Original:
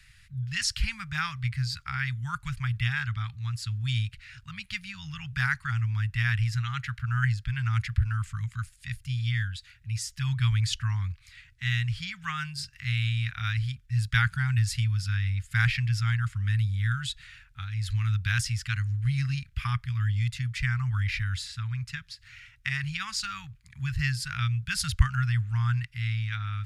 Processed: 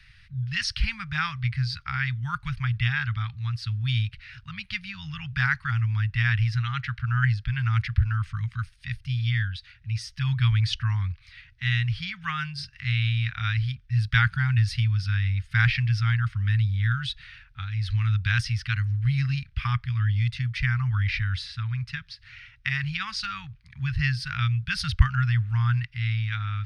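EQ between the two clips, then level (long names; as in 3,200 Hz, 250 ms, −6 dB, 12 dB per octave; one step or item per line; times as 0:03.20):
Savitzky-Golay smoothing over 15 samples
+3.0 dB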